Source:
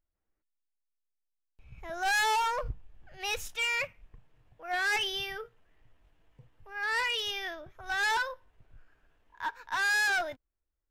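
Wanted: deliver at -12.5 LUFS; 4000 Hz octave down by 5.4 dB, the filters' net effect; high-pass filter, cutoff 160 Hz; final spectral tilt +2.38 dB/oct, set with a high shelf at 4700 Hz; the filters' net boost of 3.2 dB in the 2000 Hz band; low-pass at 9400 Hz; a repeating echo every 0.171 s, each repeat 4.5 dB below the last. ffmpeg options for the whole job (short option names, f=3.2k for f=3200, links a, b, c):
-af "highpass=160,lowpass=9.4k,equalizer=f=2k:t=o:g=7,equalizer=f=4k:t=o:g=-7.5,highshelf=f=4.7k:g=-9,aecho=1:1:171|342|513|684|855|1026|1197|1368|1539:0.596|0.357|0.214|0.129|0.0772|0.0463|0.0278|0.0167|0.01,volume=15dB"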